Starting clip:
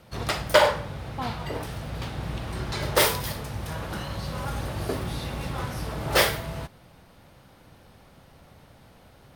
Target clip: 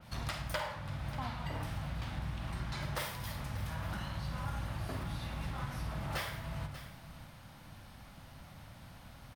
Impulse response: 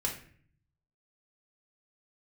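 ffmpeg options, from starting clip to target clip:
-filter_complex "[0:a]equalizer=f=430:w=2.1:g=-14,acompressor=threshold=-38dB:ratio=4,aecho=1:1:589:0.2,asplit=2[a][b];[1:a]atrim=start_sample=2205,adelay=49[c];[b][c]afir=irnorm=-1:irlink=0,volume=-12dB[d];[a][d]amix=inputs=2:normalize=0,adynamicequalizer=threshold=0.002:dfrequency=3300:dqfactor=0.7:tfrequency=3300:tqfactor=0.7:attack=5:release=100:ratio=0.375:range=2.5:mode=cutabove:tftype=highshelf"

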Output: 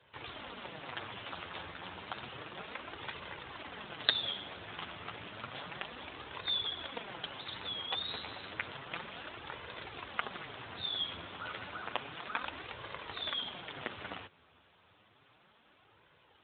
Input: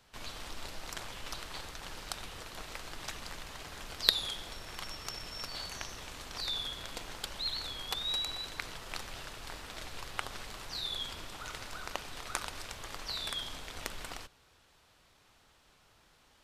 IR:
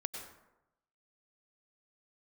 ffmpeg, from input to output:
-af "flanger=delay=1.9:depth=9.8:regen=-11:speed=0.31:shape=sinusoidal,volume=6.5dB" -ar 8000 -c:a libopencore_amrnb -b:a 12200

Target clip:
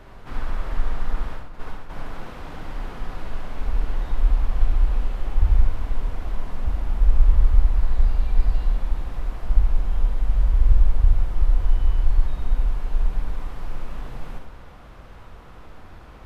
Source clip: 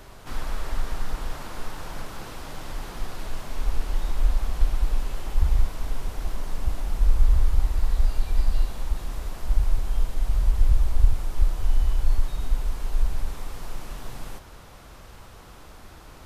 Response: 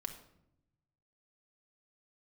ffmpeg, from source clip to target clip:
-filter_complex "[0:a]bass=f=250:g=1,treble=f=4k:g=-14,asplit=3[a][b][c];[a]afade=t=out:st=1.32:d=0.02[d];[b]agate=range=-33dB:threshold=-24dB:ratio=3:detection=peak,afade=t=in:st=1.32:d=0.02,afade=t=out:st=1.89:d=0.02[e];[c]afade=t=in:st=1.89:d=0.02[f];[d][e][f]amix=inputs=3:normalize=0,asplit=2[g][h];[1:a]atrim=start_sample=2205,adelay=69[i];[h][i]afir=irnorm=-1:irlink=0,volume=-3dB[j];[g][j]amix=inputs=2:normalize=0"

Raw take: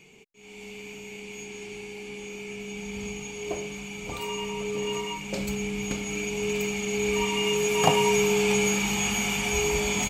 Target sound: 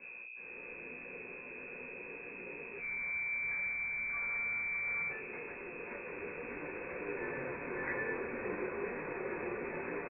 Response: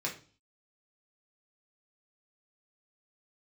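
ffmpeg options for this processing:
-filter_complex "[0:a]highpass=f=200:w=0.5412,highpass=f=200:w=1.3066,aderivative,bandreject=f=430:w=12,acrusher=bits=7:dc=4:mix=0:aa=0.000001,aeval=exprs='val(0)+0.00141*(sin(2*PI*60*n/s)+sin(2*PI*2*60*n/s)/2+sin(2*PI*3*60*n/s)/3+sin(2*PI*4*60*n/s)/4+sin(2*PI*5*60*n/s)/5)':c=same,aeval=exprs='0.0251*(cos(1*acos(clip(val(0)/0.0251,-1,1)))-cos(1*PI/2))+0.01*(cos(5*acos(clip(val(0)/0.0251,-1,1)))-cos(5*PI/2))':c=same,asplit=3[a][b][c];[a]afade=t=out:st=2.78:d=0.02[d];[b]afreqshift=360,afade=t=in:st=2.78:d=0.02,afade=t=out:st=5.08:d=0.02[e];[c]afade=t=in:st=5.08:d=0.02[f];[d][e][f]amix=inputs=3:normalize=0,aecho=1:1:192:0.158[g];[1:a]atrim=start_sample=2205,atrim=end_sample=3087[h];[g][h]afir=irnorm=-1:irlink=0,lowpass=f=2.3k:t=q:w=0.5098,lowpass=f=2.3k:t=q:w=0.6013,lowpass=f=2.3k:t=q:w=0.9,lowpass=f=2.3k:t=q:w=2.563,afreqshift=-2700"

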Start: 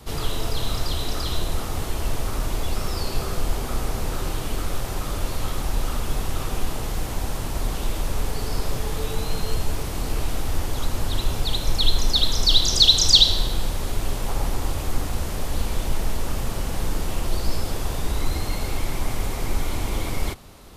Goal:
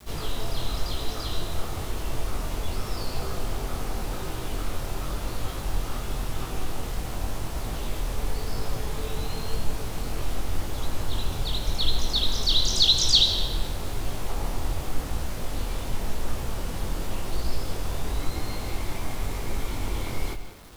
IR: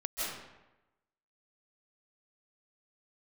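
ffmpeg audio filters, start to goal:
-filter_complex "[0:a]flanger=delay=18:depth=6:speed=0.92,acrusher=bits=7:mix=0:aa=0.000001,asplit=2[a][b];[1:a]atrim=start_sample=2205,asetrate=48510,aresample=44100,lowpass=6.5k[c];[b][c]afir=irnorm=-1:irlink=0,volume=-12.5dB[d];[a][d]amix=inputs=2:normalize=0,volume=-2.5dB"

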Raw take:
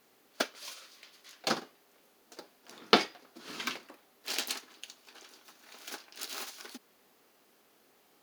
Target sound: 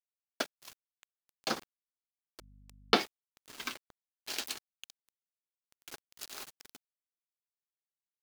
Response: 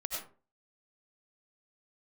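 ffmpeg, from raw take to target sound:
-filter_complex "[0:a]aeval=exprs='val(0)*gte(abs(val(0)),0.0119)':c=same,asettb=1/sr,asplit=3[a][b][c];[a]atrim=end=2.404[d];[b]atrim=start=2.4:end=2.96,asetpts=PTS-STARTPTS,afade=t=in:d=0.004:c=qsin,afade=t=out:st=0.556:d=0.004:c=qsin,aeval=exprs='val(0)+0.002*(sin(2*PI*50*n/s)+sin(2*PI*2*50*n/s)/2+sin(2*PI*3*50*n/s)/3+sin(2*PI*4*50*n/s)/4+sin(2*PI*5*50*n/s)/5)':c=same[e];[c]atrim=start=2.956[f];[d][e]acrossfade=d=0.004:c1=hsin:c2=qsin[g];[g][f]acrossfade=d=0.004:c1=qsin:c2=hsin,volume=-3dB"

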